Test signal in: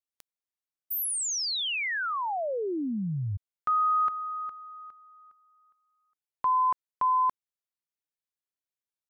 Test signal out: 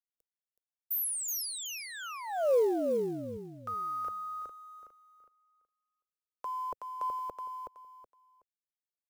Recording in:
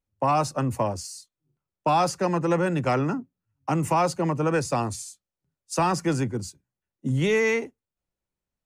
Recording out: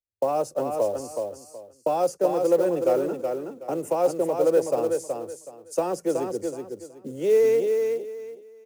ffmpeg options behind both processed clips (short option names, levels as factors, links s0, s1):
-filter_complex "[0:a]agate=range=0.112:threshold=0.00224:ratio=16:release=42:detection=peak,equalizer=f=125:t=o:w=1:g=-6,equalizer=f=250:t=o:w=1:g=-5,equalizer=f=500:t=o:w=1:g=11,equalizer=f=1000:t=o:w=1:g=-11,equalizer=f=2000:t=o:w=1:g=-11,equalizer=f=4000:t=o:w=1:g=-12,equalizer=f=8000:t=o:w=1:g=-3,acrossover=split=250|2200[s0][s1][s2];[s0]acompressor=threshold=0.00398:ratio=8:attack=25:release=278[s3];[s3][s1][s2]amix=inputs=3:normalize=0,acrusher=bits=7:mode=log:mix=0:aa=0.000001,aecho=1:1:373|746|1119:0.562|0.135|0.0324"